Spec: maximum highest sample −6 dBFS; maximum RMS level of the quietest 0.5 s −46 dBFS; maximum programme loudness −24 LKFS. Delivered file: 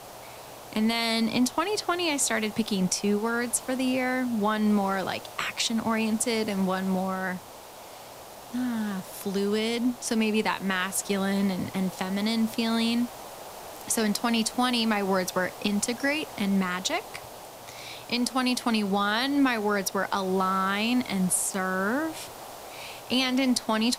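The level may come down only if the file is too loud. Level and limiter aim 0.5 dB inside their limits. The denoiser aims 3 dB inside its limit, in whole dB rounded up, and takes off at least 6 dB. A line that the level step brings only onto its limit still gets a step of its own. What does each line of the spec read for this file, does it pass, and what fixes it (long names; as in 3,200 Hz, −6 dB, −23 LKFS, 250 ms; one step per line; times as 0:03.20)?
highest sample −9.0 dBFS: in spec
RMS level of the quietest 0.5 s −45 dBFS: out of spec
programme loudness −26.5 LKFS: in spec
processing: broadband denoise 6 dB, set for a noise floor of −45 dBFS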